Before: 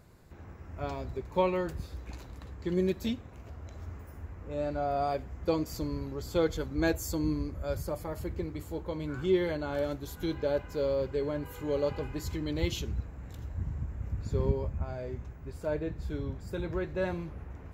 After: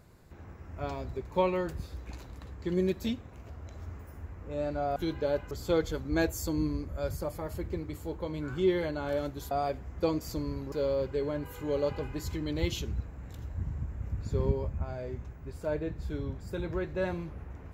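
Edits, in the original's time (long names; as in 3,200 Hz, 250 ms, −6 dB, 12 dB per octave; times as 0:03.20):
0:04.96–0:06.17: swap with 0:10.17–0:10.72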